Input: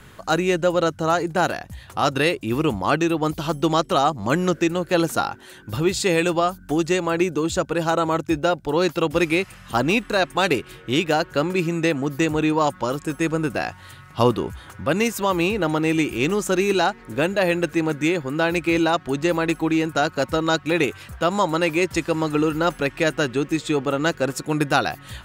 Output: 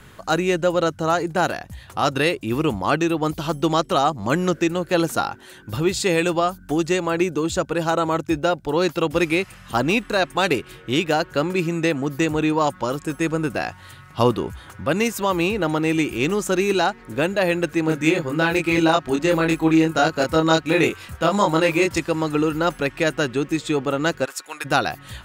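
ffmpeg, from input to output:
ffmpeg -i in.wav -filter_complex "[0:a]asettb=1/sr,asplit=3[link_01][link_02][link_03];[link_01]atrim=end=17.854[link_04];[link_02]atrim=start=17.85:end=22,asetpts=PTS-STARTPTS,afade=type=in:duration=0.004:curve=qsin,afade=type=out:start_time=4.146:duration=0.004:curve=qsin,asplit=2[link_05][link_06];[link_06]adelay=25,volume=-2dB[link_07];[link_05][link_07]amix=inputs=2:normalize=0,atrim=end_sample=183015[link_08];[link_03]atrim=start=21.996[link_09];[link_04][link_08]acrossfade=duration=0.004:curve1=hsin:curve2=qsin[link_10];[link_10][link_09]acrossfade=duration=0.004:curve1=qsin:curve2=hsin,asplit=3[link_11][link_12][link_13];[link_11]afade=type=out:start_time=24.24:duration=0.02[link_14];[link_12]highpass=1100,afade=type=in:start_time=24.24:duration=0.02,afade=type=out:start_time=24.64:duration=0.02[link_15];[link_13]afade=type=in:start_time=24.64:duration=0.02[link_16];[link_14][link_15][link_16]amix=inputs=3:normalize=0" out.wav

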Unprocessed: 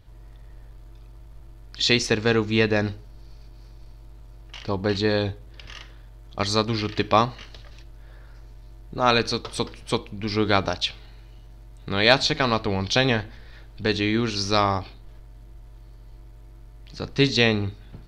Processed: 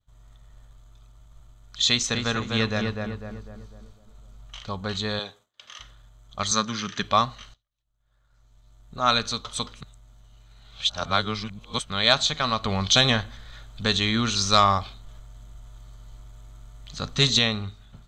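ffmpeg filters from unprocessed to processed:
ffmpeg -i in.wav -filter_complex "[0:a]asettb=1/sr,asplit=3[link_01][link_02][link_03];[link_01]atrim=end=1.884[link_04];[link_02]atrim=start=1.88:end=4.59,asetpts=PTS-STARTPTS,afade=type=in:duration=0.004:curve=qsin,afade=type=out:start_time=2.706:duration=0.004:curve=qsin,asplit=2[link_05][link_06];[link_06]adelay=250,lowpass=frequency=1600:poles=1,volume=-3dB,asplit=2[link_07][link_08];[link_08]adelay=250,lowpass=frequency=1600:poles=1,volume=0.49,asplit=2[link_09][link_10];[link_10]adelay=250,lowpass=frequency=1600:poles=1,volume=0.49,asplit=2[link_11][link_12];[link_12]adelay=250,lowpass=frequency=1600:poles=1,volume=0.49,asplit=2[link_13][link_14];[link_14]adelay=250,lowpass=frequency=1600:poles=1,volume=0.49,asplit=2[link_15][link_16];[link_16]adelay=250,lowpass=frequency=1600:poles=1,volume=0.49[link_17];[link_05][link_07][link_09][link_11][link_13][link_15][link_17]amix=inputs=7:normalize=0,atrim=end_sample=119511[link_18];[link_03]atrim=start=4.586[link_19];[link_04][link_18]acrossfade=duration=0.004:curve1=hsin:curve2=qsin[link_20];[link_20][link_19]acrossfade=duration=0.004:curve1=qsin:curve2=hsin,asettb=1/sr,asplit=3[link_21][link_22][link_23];[link_21]atrim=end=5.194[link_24];[link_22]atrim=start=5.19:end=5.8,asetpts=PTS-STARTPTS,afade=type=in:duration=0.004:curve=qsin,afade=type=out:start_time=0.606:duration=0.004:curve=qsin,highpass=320[link_25];[link_23]atrim=start=5.796[link_26];[link_24][link_25]acrossfade=duration=0.004:curve1=hsin:curve2=qsin[link_27];[link_27][link_26]acrossfade=duration=0.004:curve1=qsin:curve2=hsin,asettb=1/sr,asplit=3[link_28][link_29][link_30];[link_28]atrim=end=6.514[link_31];[link_29]atrim=start=6.51:end=7.03,asetpts=PTS-STARTPTS,afade=type=in:duration=0.004:curve=qsin,afade=type=out:start_time=0.516:duration=0.004:curve=qsin,highpass=150,equalizer=frequency=190:width_type=q:width=4:gain=9,equalizer=frequency=710:width_type=q:width=4:gain=-6,equalizer=frequency=1600:width_type=q:width=4:gain=9,equalizer=frequency=4100:width_type=q:width=4:gain=-4,equalizer=frequency=5900:width_type=q:width=4:gain=10,lowpass=frequency=8400:width=0.5412,lowpass=frequency=8400:width=1.3066[link_32];[link_30]atrim=start=7.026[link_33];[link_31][link_32]acrossfade=duration=0.004:curve1=hsin:curve2=qsin[link_34];[link_34][link_33]acrossfade=duration=0.004:curve1=qsin:curve2=hsin,asettb=1/sr,asplit=3[link_35][link_36][link_37];[link_35]atrim=end=12.634[link_38];[link_36]atrim=start=12.63:end=17.39,asetpts=PTS-STARTPTS,afade=type=in:duration=0.004:curve=qsin,afade=type=out:start_time=4.756:duration=0.004:curve=qsin,acontrast=37[link_39];[link_37]atrim=start=17.386[link_40];[link_38][link_39]acrossfade=duration=0.004:curve1=hsin:curve2=qsin[link_41];[link_41][link_40]acrossfade=duration=0.004:curve1=qsin:curve2=hsin,asplit=4[link_42][link_43][link_44][link_45];[link_42]atrim=end=7.54,asetpts=PTS-STARTPTS,afade=type=out:start_time=7.536:duration=0.004:curve=hsin:silence=0.0630957[link_46];[link_43]atrim=start=7.54:end=9.812,asetpts=PTS-STARTPTS,afade=type=in:duration=1.52:silence=0.0630957[link_47];[link_44]atrim=start=9.808:end=11.902,asetpts=PTS-STARTPTS,areverse[link_48];[link_45]atrim=start=11.898[link_49];[link_46][link_47]concat=n=2:v=0:a=1[link_50];[link_50][link_48]acrossfade=duration=0.004:curve1=hsin:curve2=hsin[link_51];[link_51][link_49]acrossfade=duration=0.004:curve1=hsin:curve2=hsin,superequalizer=6b=0.316:7b=0.501:10b=2:13b=2.24:15b=3.55,agate=range=-33dB:threshold=-42dB:ratio=3:detection=peak,volume=-5dB" out.wav

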